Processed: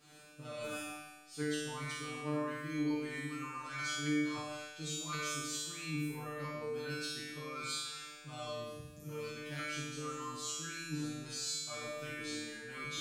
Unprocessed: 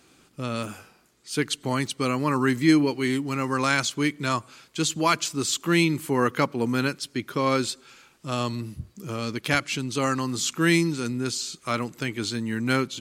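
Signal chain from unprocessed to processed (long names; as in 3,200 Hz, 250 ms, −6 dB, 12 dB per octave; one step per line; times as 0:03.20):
reversed playback
downward compressor 12 to 1, threshold −36 dBFS, peak gain reduction 22.5 dB
reversed playback
tuned comb filter 150 Hz, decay 1.1 s, harmonics all, mix 100%
convolution reverb RT60 0.60 s, pre-delay 45 ms, DRR 2 dB
level +16 dB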